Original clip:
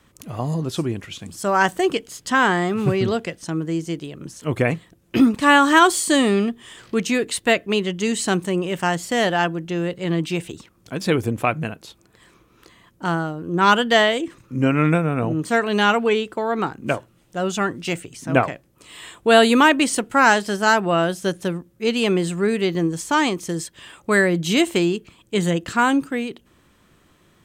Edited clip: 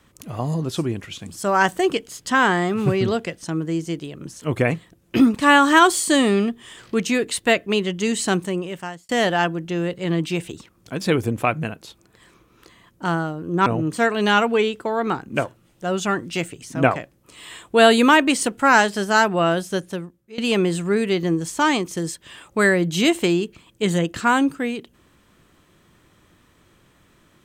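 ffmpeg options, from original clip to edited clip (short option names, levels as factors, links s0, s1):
-filter_complex "[0:a]asplit=4[s0][s1][s2][s3];[s0]atrim=end=9.09,asetpts=PTS-STARTPTS,afade=t=out:st=8.34:d=0.75[s4];[s1]atrim=start=9.09:end=13.662,asetpts=PTS-STARTPTS,afade=t=in:d=0.004:c=hsin[s5];[s2]atrim=start=15.178:end=21.9,asetpts=PTS-STARTPTS,afade=t=out:st=5.962:d=0.76:silence=0.0891251[s6];[s3]atrim=start=21.9,asetpts=PTS-STARTPTS,afade=t=in:d=0.004:c=hsin:silence=0.0891251[s7];[s4][s5]concat=n=2:v=0:a=1[s8];[s6][s7]concat=n=2:v=0:a=1[s9];[s8][s9]acrossfade=d=0.004:c1=hsin:c2=hsin"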